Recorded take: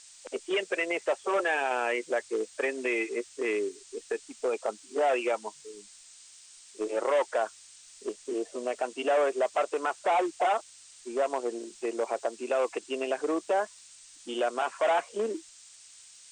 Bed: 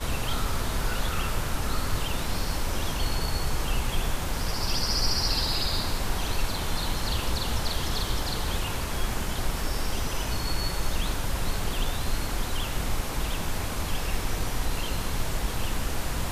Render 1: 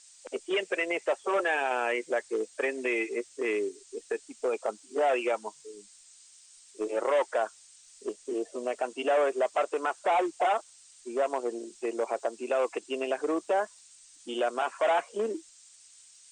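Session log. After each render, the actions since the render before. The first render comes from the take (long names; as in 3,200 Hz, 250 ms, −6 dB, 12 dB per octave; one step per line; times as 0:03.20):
broadband denoise 6 dB, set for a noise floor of −53 dBFS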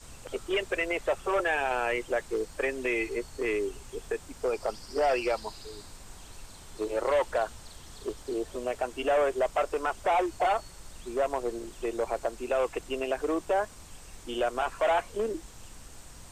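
mix in bed −20 dB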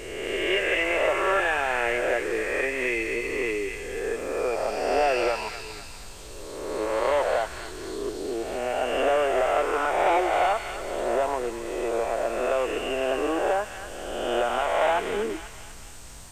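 peak hold with a rise ahead of every peak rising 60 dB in 1.62 s
delay with a high-pass on its return 242 ms, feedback 48%, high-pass 1,600 Hz, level −4 dB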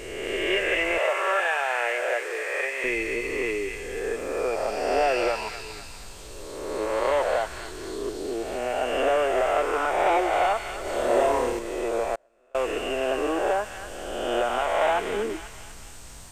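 0:00.98–0:02.84: high-pass filter 480 Hz 24 dB per octave
0:10.82–0:11.59: flutter between parallel walls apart 4.8 metres, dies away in 0.68 s
0:12.15–0:12.55: gate with flip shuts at −27 dBFS, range −36 dB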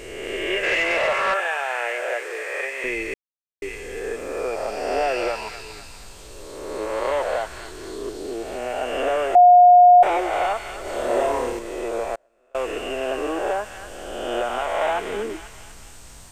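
0:00.63–0:01.34: mid-hump overdrive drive 13 dB, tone 4,200 Hz, clips at −13 dBFS
0:03.14–0:03.62: silence
0:09.35–0:10.03: beep over 715 Hz −7 dBFS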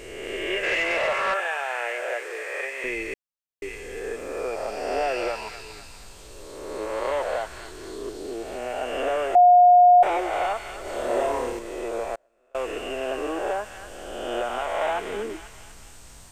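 level −3 dB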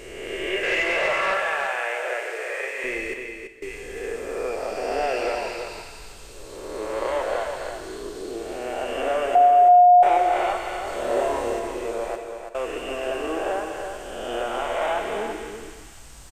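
on a send: single-tap delay 334 ms −7 dB
on the sum: reverb whose tail is shaped and stops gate 230 ms flat, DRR 7.5 dB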